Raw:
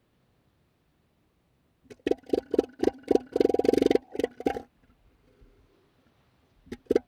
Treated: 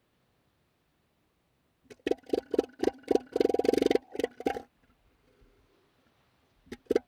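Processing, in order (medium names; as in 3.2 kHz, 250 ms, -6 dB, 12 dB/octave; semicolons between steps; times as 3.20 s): bass shelf 420 Hz -6 dB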